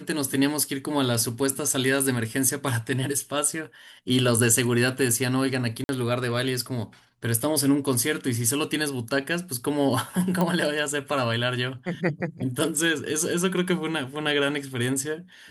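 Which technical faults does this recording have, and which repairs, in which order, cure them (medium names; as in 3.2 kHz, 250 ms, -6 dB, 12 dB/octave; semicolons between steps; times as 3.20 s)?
5.84–5.89 s: dropout 51 ms
10.41 s: pop -12 dBFS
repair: de-click; interpolate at 5.84 s, 51 ms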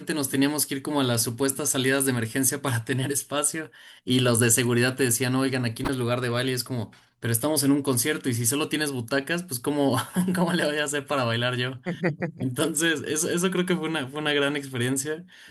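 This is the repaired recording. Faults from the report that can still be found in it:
nothing left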